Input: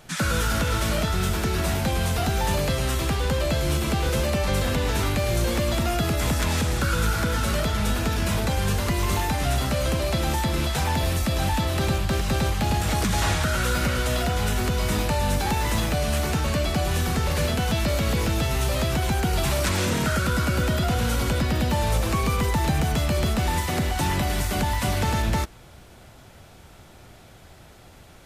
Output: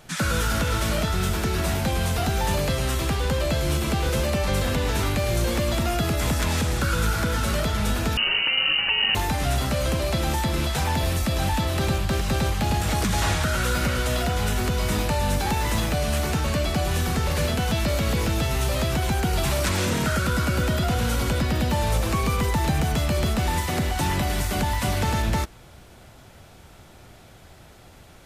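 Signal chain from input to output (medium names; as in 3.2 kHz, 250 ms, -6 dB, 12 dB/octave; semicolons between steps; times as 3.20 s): 8.17–9.15 s: frequency inversion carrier 2.9 kHz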